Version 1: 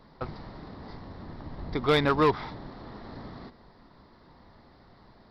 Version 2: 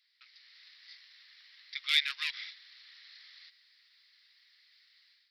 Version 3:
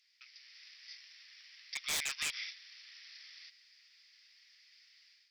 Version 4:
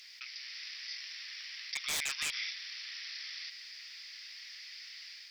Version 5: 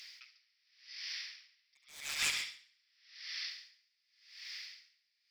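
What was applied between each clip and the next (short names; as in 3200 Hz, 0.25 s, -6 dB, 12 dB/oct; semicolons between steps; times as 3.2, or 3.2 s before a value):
steep high-pass 2100 Hz 36 dB/oct; AGC gain up to 9.5 dB; gain -4.5 dB
thirty-one-band EQ 2500 Hz +6 dB, 4000 Hz -10 dB, 6300 Hz +11 dB; wavefolder -29.5 dBFS; bell 5400 Hz +8.5 dB 1.5 oct; gain -3 dB
fast leveller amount 50%
multi-head echo 69 ms, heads first and second, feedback 54%, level -8.5 dB; dB-linear tremolo 0.88 Hz, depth 36 dB; gain +1.5 dB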